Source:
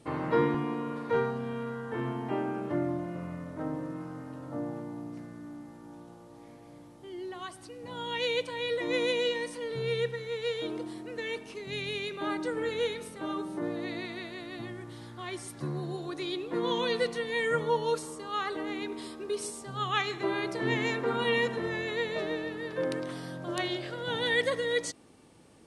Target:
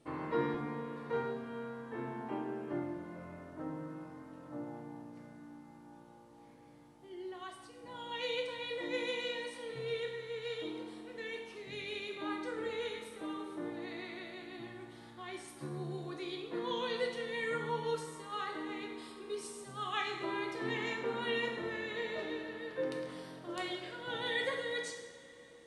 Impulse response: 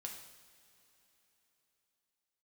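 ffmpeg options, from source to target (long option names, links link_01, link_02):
-filter_complex "[0:a]bass=frequency=250:gain=-2,treble=frequency=4000:gain=-3[link_01];[1:a]atrim=start_sample=2205[link_02];[link_01][link_02]afir=irnorm=-1:irlink=0,volume=-2.5dB"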